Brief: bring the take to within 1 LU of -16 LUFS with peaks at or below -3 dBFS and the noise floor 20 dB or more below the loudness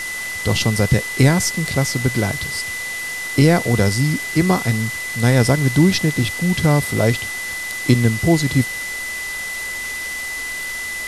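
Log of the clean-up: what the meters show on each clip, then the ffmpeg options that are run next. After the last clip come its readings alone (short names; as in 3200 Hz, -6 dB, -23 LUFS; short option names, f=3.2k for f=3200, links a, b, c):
steady tone 2000 Hz; tone level -25 dBFS; noise floor -27 dBFS; noise floor target -39 dBFS; loudness -18.5 LUFS; peak -1.0 dBFS; loudness target -16.0 LUFS
-> -af "bandreject=f=2k:w=30"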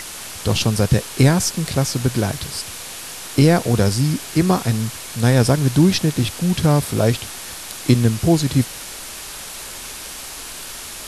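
steady tone none; noise floor -33 dBFS; noise floor target -39 dBFS
-> -af "afftdn=nr=6:nf=-33"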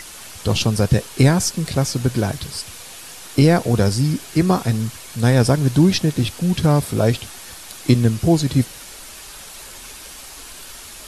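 noise floor -38 dBFS; noise floor target -39 dBFS
-> -af "afftdn=nr=6:nf=-38"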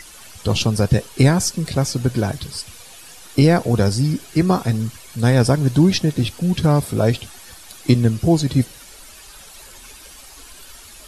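noise floor -42 dBFS; loudness -18.5 LUFS; peak -2.0 dBFS; loudness target -16.0 LUFS
-> -af "volume=2.5dB,alimiter=limit=-3dB:level=0:latency=1"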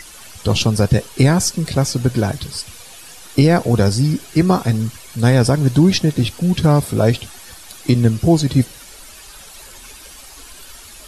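loudness -16.5 LUFS; peak -3.0 dBFS; noise floor -39 dBFS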